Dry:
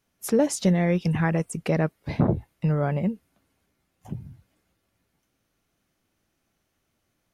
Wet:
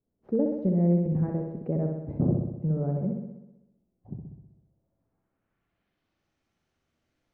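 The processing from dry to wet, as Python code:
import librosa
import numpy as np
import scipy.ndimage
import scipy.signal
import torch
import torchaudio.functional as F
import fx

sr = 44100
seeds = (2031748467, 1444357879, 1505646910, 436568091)

y = scipy.signal.medfilt(x, 5)
y = fx.room_flutter(y, sr, wall_m=10.9, rt60_s=0.94)
y = fx.filter_sweep_lowpass(y, sr, from_hz=440.0, to_hz=8300.0, start_s=4.65, end_s=6.42, q=1.0)
y = F.gain(torch.from_numpy(y), -5.5).numpy()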